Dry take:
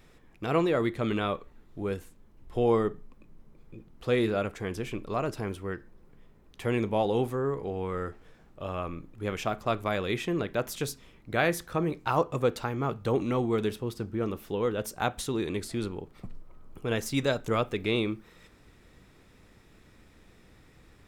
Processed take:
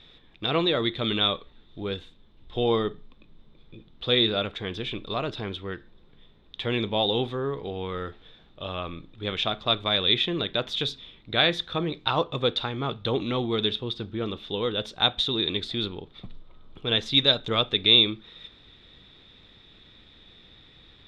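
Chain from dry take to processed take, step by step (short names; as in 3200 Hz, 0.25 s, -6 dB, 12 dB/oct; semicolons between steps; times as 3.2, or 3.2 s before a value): synth low-pass 3600 Hz, resonance Q 14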